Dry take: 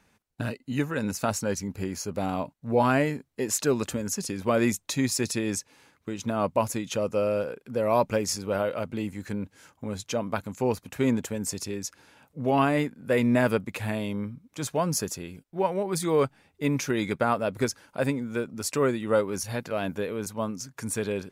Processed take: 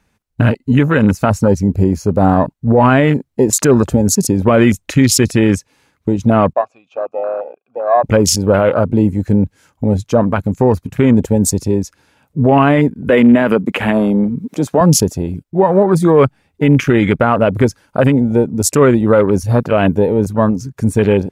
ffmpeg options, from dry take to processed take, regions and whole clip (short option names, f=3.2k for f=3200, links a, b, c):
-filter_complex "[0:a]asettb=1/sr,asplit=3[a][b][c];[a]atrim=end=6.534[d];[b]atrim=start=6.53:end=8.04,asetpts=PTS-STARTPTS,afade=t=in:d=0.004:c=qsin,afade=t=out:st=1.506:d=0.004:c=qsin,acrossover=split=8000[e][f];[f]acompressor=threshold=-60dB:ratio=4:attack=1:release=60[g];[e][g]amix=inputs=2:normalize=0,asplit=3[h][i][j];[h]bandpass=f=730:t=q:w=8,volume=0dB[k];[i]bandpass=f=1.09k:t=q:w=8,volume=-6dB[l];[j]bandpass=f=2.44k:t=q:w=8,volume=-9dB[m];[k][l][m]amix=inputs=3:normalize=0[n];[c]atrim=start=8.036[o];[d][n]acrossfade=d=0.004:c1=hsin:c2=qsin[p];[p][o]acrossfade=d=0.004:c1=qsin:c2=hsin,asettb=1/sr,asplit=3[q][r][s];[q]atrim=end=13.094[t];[r]atrim=start=13.09:end=14.81,asetpts=PTS-STARTPTS,afade=t=in:d=0.004:c=qsin,afade=t=out:st=1.716:d=0.004:c=qsin,highpass=f=170:w=0.5412,highpass=f=170:w=1.3066,acompressor=mode=upward:threshold=-29dB:ratio=2.5:attack=3.2:release=140:knee=2.83:detection=peak[u];[s]atrim=start=14.806[v];[t][u]acrossfade=d=0.004:c1=hsin:c2=qsin[w];[w][v]acrossfade=d=0.004:c1=qsin:c2=hsin,afwtdn=0.0158,lowshelf=f=96:g=10,alimiter=level_in=18.5dB:limit=-1dB:release=50:level=0:latency=1,volume=-1dB"